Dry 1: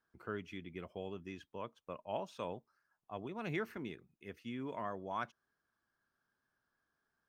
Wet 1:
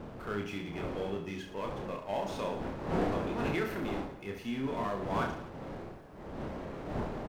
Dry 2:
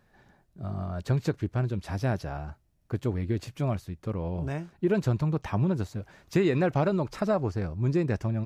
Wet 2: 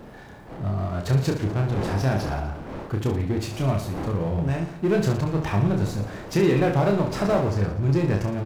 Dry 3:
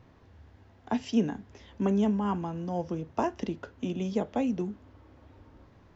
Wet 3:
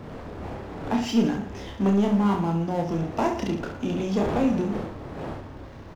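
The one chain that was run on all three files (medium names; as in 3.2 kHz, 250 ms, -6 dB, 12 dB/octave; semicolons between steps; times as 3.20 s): wind noise 540 Hz -46 dBFS; power-law waveshaper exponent 0.7; reverse bouncing-ball echo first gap 30 ms, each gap 1.25×, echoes 5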